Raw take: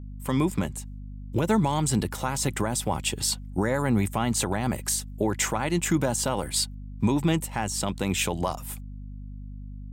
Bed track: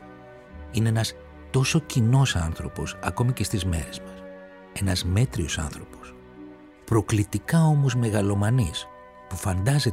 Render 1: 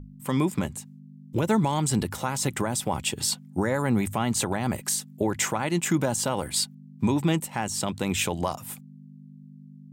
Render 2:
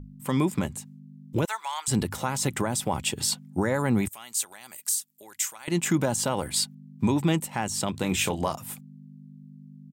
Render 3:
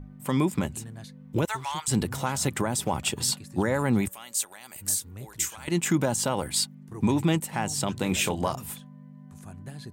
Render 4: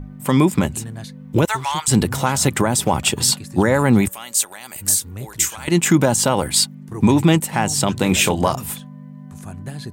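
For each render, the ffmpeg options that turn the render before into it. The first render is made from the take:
-af "bandreject=f=50:t=h:w=6,bandreject=f=100:t=h:w=6"
-filter_complex "[0:a]asettb=1/sr,asplit=3[s0][s1][s2];[s0]atrim=end=1.454[s3];[s1]atrim=start=1.45:end=1.88,asetpts=PTS-STARTPTS,afade=t=in:d=0.004:c=qsin,afade=t=out:st=0.426:d=0.004:c=qsin,highpass=f=950:w=0.5412,highpass=f=950:w=1.3066[s4];[s2]atrim=start=1.876[s5];[s3][s4]acrossfade=d=0.004:c1=hsin:c2=qsin[s6];[s6][s5]acrossfade=d=0.004:c1=qsin:c2=hsin,asettb=1/sr,asplit=3[s7][s8][s9];[s7]atrim=end=4.084[s10];[s8]atrim=start=4.08:end=5.68,asetpts=PTS-STARTPTS,afade=t=in:d=0.004:c=qsin,afade=t=out:st=1.596:d=0.004:c=qsin,aderivative[s11];[s9]atrim=start=5.676[s12];[s10][s11]acrossfade=d=0.004:c1=hsin:c2=qsin[s13];[s13][s12]acrossfade=d=0.004:c1=qsin:c2=hsin,asplit=3[s14][s15][s16];[s14]afade=t=out:st=7.93:d=0.02[s17];[s15]asplit=2[s18][s19];[s19]adelay=27,volume=0.355[s20];[s18][s20]amix=inputs=2:normalize=0,afade=t=in:st=7.93:d=0.02,afade=t=out:st=8.54:d=0.02[s21];[s16]afade=t=in:st=8.54:d=0.02[s22];[s17][s21][s22]amix=inputs=3:normalize=0"
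-filter_complex "[1:a]volume=0.1[s0];[0:a][s0]amix=inputs=2:normalize=0"
-af "volume=2.99"

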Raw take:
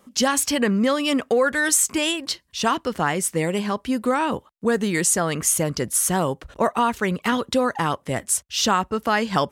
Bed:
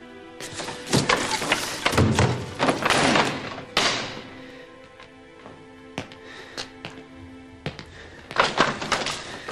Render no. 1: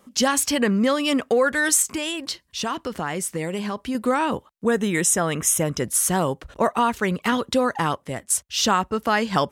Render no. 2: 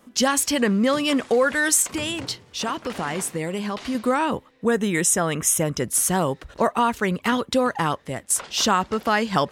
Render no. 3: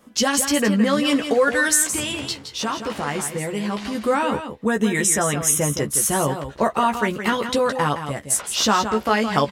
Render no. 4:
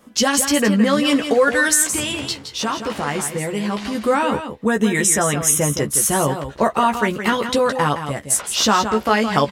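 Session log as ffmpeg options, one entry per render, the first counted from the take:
-filter_complex "[0:a]asettb=1/sr,asplit=3[s0][s1][s2];[s0]atrim=end=1.824[s3];[s1]atrim=start=1.82:end=3.95,asetpts=PTS-STARTPTS,afade=t=in:d=0.004:c=qsin,afade=t=out:st=2.126:d=0.004:c=qsin,acompressor=threshold=0.0631:ratio=2.5:attack=3.2:release=140:knee=1:detection=peak[s4];[s2]atrim=start=3.946[s5];[s3][s4]acrossfade=d=0.004:c1=hsin:c2=qsin[s6];[s6][s5]acrossfade=d=0.004:c1=qsin:c2=hsin,asettb=1/sr,asplit=3[s7][s8][s9];[s7]atrim=end=4.654[s10];[s8]atrim=start=4.65:end=5.84,asetpts=PTS-STARTPTS,afade=t=in:d=0.004:c=qsin,afade=t=out:st=1.186:d=0.004:c=qsin,asuperstop=centerf=4500:order=12:qfactor=5.5[s11];[s9]atrim=start=5.836[s12];[s10][s11]acrossfade=d=0.004:c1=hsin:c2=qsin[s13];[s13][s12]acrossfade=d=0.004:c1=qsin:c2=hsin,asplit=2[s14][s15];[s14]atrim=end=8.3,asetpts=PTS-STARTPTS,afade=t=out:st=7.88:d=0.42:silence=0.316228[s16];[s15]atrim=start=8.3,asetpts=PTS-STARTPTS,afade=t=in:d=0.004:c=hsin:silence=0.316228[s17];[s16][s17]concat=n=2:v=0:a=1"
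-filter_complex "[1:a]volume=0.119[s0];[0:a][s0]amix=inputs=2:normalize=0"
-filter_complex "[0:a]asplit=2[s0][s1];[s1]adelay=14,volume=0.562[s2];[s0][s2]amix=inputs=2:normalize=0,asplit=2[s3][s4];[s4]aecho=0:1:167:0.355[s5];[s3][s5]amix=inputs=2:normalize=0"
-af "volume=1.33,alimiter=limit=0.708:level=0:latency=1"

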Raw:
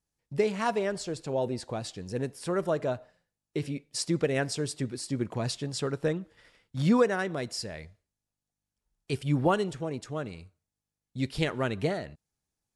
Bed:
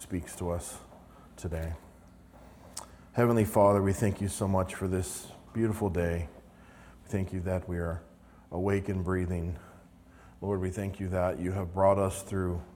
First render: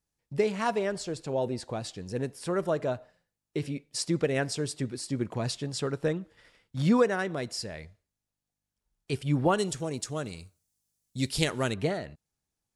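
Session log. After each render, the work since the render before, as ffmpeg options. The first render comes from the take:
-filter_complex "[0:a]asettb=1/sr,asplit=3[s0][s1][s2];[s0]atrim=end=9.584[s3];[s1]atrim=start=9.58:end=11.74,asetpts=PTS-STARTPTS,afade=t=in:d=0.004:c=qsin,afade=t=out:st=2.156:d=0.004:c=qsin,bass=f=250:g=1,treble=f=4000:g=14[s4];[s2]atrim=start=11.736[s5];[s3][s4]acrossfade=d=0.004:c1=hsin:c2=qsin[s6];[s6][s5]acrossfade=d=0.004:c1=qsin:c2=hsin"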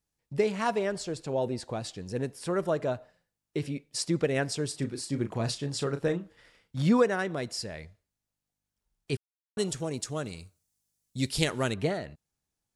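-filter_complex "[0:a]asettb=1/sr,asplit=3[s0][s1][s2];[s0]atrim=end=4.694[s3];[s1]atrim=start=4.69:end=6.76,asetpts=PTS-STARTPTS,afade=t=in:d=0.004:c=qsin,afade=t=out:st=2.066:d=0.004:c=qsin,asplit=2[s4][s5];[s5]adelay=35,volume=0.335[s6];[s4][s6]amix=inputs=2:normalize=0,atrim=end_sample=91287[s7];[s2]atrim=start=6.756[s8];[s3][s7]acrossfade=d=0.004:c1=hsin:c2=qsin[s9];[s9][s8]acrossfade=d=0.004:c1=qsin:c2=hsin,asplit=3[s10][s11][s12];[s10]atrim=end=9.17,asetpts=PTS-STARTPTS,afade=t=out:st=9.166:d=0.004:c=hsin[s13];[s11]atrim=start=9.17:end=9.57,asetpts=PTS-STARTPTS,volume=0[s14];[s12]atrim=start=9.57,asetpts=PTS-STARTPTS,afade=t=in:d=0.004:c=hsin[s15];[s13][s14][s15]concat=n=3:v=0:a=1"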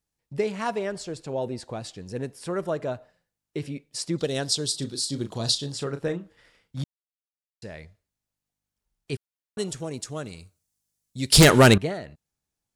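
-filter_complex "[0:a]asettb=1/sr,asplit=3[s0][s1][s2];[s0]atrim=end=4.184[s3];[s1]atrim=start=4.18:end=5.72,asetpts=PTS-STARTPTS,afade=t=in:d=0.004:c=qsin,afade=t=out:st=1.536:d=0.004:c=qsin,highshelf=f=2900:t=q:w=3:g=8[s4];[s2]atrim=start=5.716[s5];[s3][s4]acrossfade=d=0.004:c1=hsin:c2=qsin[s6];[s6][s5]acrossfade=d=0.004:c1=qsin:c2=hsin,asettb=1/sr,asplit=3[s7][s8][s9];[s7]atrim=end=11.324[s10];[s8]atrim=start=11.32:end=11.78,asetpts=PTS-STARTPTS,afade=t=in:d=0.004:c=qsin,afade=t=out:st=0.456:d=0.004:c=qsin,aeval=exprs='0.422*sin(PI/2*5.01*val(0)/0.422)':c=same[s11];[s9]atrim=start=11.776[s12];[s10][s11]acrossfade=d=0.004:c1=hsin:c2=qsin[s13];[s13][s12]acrossfade=d=0.004:c1=qsin:c2=hsin,asplit=3[s14][s15][s16];[s14]atrim=end=6.84,asetpts=PTS-STARTPTS,afade=t=out:st=6.836:d=0.004:c=hsin[s17];[s15]atrim=start=6.84:end=7.62,asetpts=PTS-STARTPTS,volume=0[s18];[s16]atrim=start=7.62,asetpts=PTS-STARTPTS,afade=t=in:d=0.004:c=hsin[s19];[s17][s18][s19]concat=n=3:v=0:a=1"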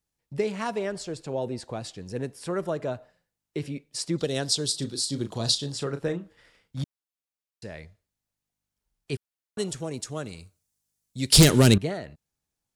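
-filter_complex "[0:a]acrossover=split=400|3000[s0][s1][s2];[s1]acompressor=threshold=0.0447:ratio=6[s3];[s0][s3][s2]amix=inputs=3:normalize=0"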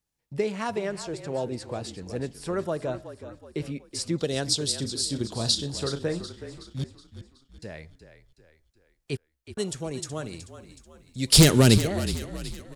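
-filter_complex "[0:a]asplit=6[s0][s1][s2][s3][s4][s5];[s1]adelay=372,afreqshift=-38,volume=0.251[s6];[s2]adelay=744,afreqshift=-76,volume=0.116[s7];[s3]adelay=1116,afreqshift=-114,volume=0.0531[s8];[s4]adelay=1488,afreqshift=-152,volume=0.0245[s9];[s5]adelay=1860,afreqshift=-190,volume=0.0112[s10];[s0][s6][s7][s8][s9][s10]amix=inputs=6:normalize=0"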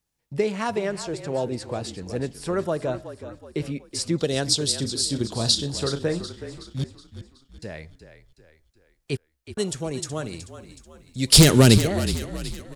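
-af "volume=1.5,alimiter=limit=0.891:level=0:latency=1"

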